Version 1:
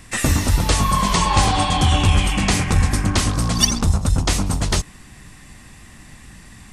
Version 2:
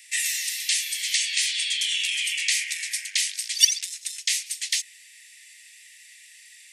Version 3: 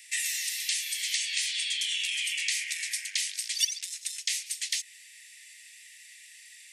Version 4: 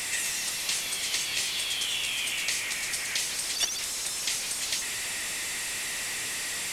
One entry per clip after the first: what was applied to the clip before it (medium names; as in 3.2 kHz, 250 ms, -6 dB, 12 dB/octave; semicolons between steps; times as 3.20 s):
steep high-pass 1.9 kHz 72 dB/octave
compression 2:1, threshold -28 dBFS, peak gain reduction 10 dB; trim -1.5 dB
one-bit delta coder 64 kbps, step -26.5 dBFS